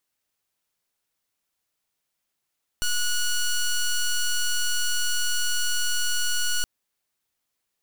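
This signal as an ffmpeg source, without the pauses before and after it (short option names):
-f lavfi -i "aevalsrc='0.0708*(2*lt(mod(1460*t,1),0.1)-1)':d=3.82:s=44100"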